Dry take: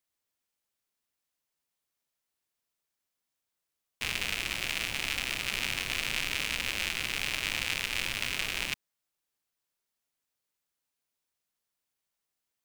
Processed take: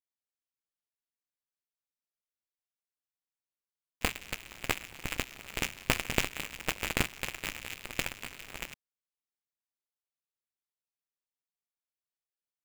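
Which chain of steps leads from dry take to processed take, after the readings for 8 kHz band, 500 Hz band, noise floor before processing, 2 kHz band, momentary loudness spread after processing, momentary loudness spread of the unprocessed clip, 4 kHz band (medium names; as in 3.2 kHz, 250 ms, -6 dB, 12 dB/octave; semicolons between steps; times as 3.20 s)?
-2.5 dB, +5.0 dB, under -85 dBFS, -4.5 dB, 11 LU, 2 LU, -7.0 dB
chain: square wave that keeps the level; gate -23 dBFS, range -23 dB; trim +3.5 dB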